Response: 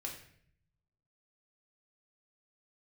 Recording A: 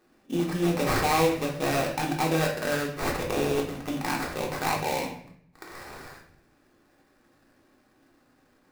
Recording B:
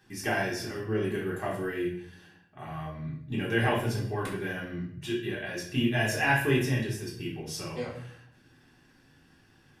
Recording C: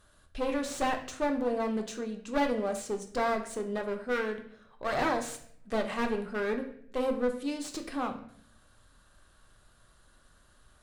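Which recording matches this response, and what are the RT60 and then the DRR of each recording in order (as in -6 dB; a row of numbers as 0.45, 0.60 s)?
A; 0.60, 0.60, 0.65 s; -1.0, -5.5, 4.0 dB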